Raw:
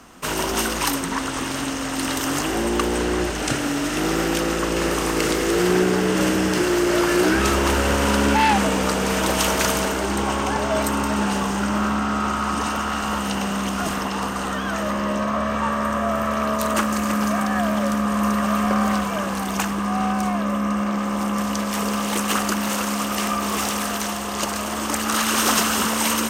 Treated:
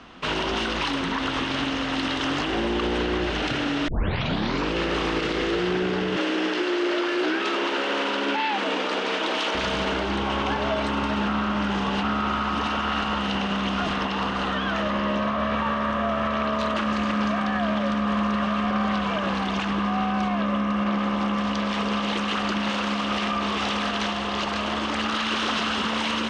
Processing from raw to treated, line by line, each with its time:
0:03.88: tape start 0.85 s
0:06.16–0:09.55: Chebyshev high-pass filter 290 Hz, order 3
0:11.28–0:12.03: reverse
whole clip: Chebyshev low-pass filter 3,600 Hz, order 3; high-shelf EQ 3,100 Hz +9.5 dB; brickwall limiter −16.5 dBFS

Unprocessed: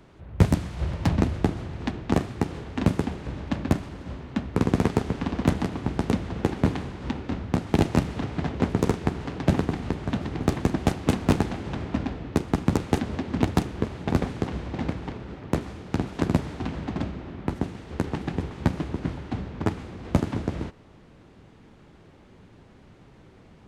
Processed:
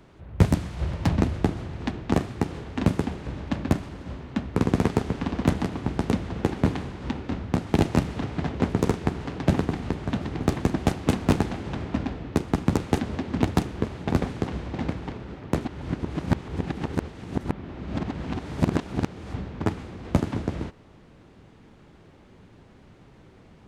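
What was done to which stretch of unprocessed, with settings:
0:15.65–0:19.34: reverse

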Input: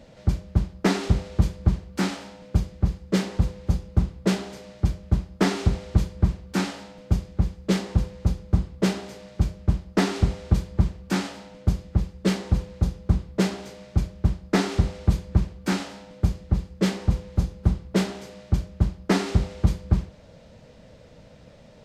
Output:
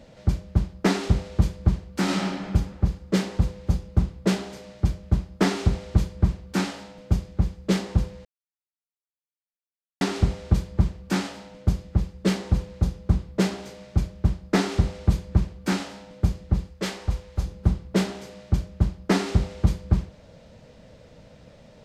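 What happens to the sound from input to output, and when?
0:02.03–0:02.47: thrown reverb, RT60 1.5 s, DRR −5 dB
0:08.25–0:10.01: silence
0:16.70–0:17.46: parametric band 200 Hz −10 dB 2.1 octaves

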